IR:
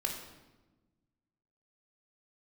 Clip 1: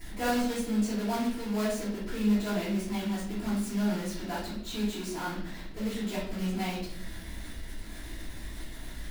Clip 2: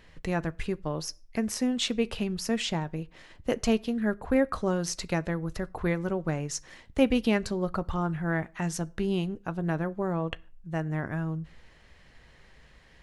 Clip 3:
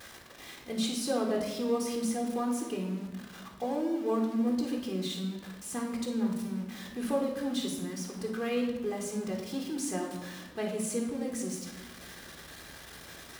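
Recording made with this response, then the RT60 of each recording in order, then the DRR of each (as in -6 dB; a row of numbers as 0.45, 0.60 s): 3; 0.65, 0.40, 1.2 s; -10.0, 14.5, 1.0 dB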